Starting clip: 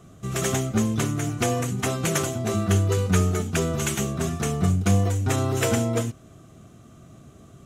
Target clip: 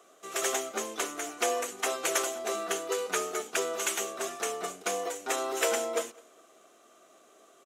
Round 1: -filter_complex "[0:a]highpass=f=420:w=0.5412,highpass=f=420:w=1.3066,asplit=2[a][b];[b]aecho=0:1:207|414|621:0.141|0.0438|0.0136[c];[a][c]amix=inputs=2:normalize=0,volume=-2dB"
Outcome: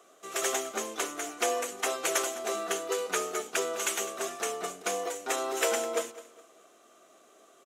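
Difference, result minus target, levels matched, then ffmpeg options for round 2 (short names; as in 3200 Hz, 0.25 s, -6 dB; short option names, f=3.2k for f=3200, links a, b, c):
echo-to-direct +8.5 dB
-filter_complex "[0:a]highpass=f=420:w=0.5412,highpass=f=420:w=1.3066,asplit=2[a][b];[b]aecho=0:1:207|414:0.0531|0.0165[c];[a][c]amix=inputs=2:normalize=0,volume=-2dB"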